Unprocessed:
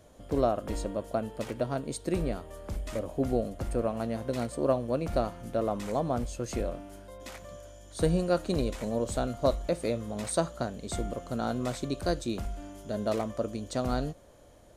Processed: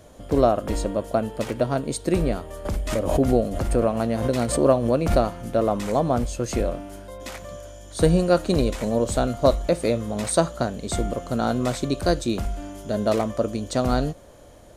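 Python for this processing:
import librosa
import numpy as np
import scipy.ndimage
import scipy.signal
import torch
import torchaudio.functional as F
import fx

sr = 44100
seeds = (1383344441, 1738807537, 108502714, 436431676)

y = fx.pre_swell(x, sr, db_per_s=61.0, at=(2.65, 5.34))
y = y * 10.0 ** (8.0 / 20.0)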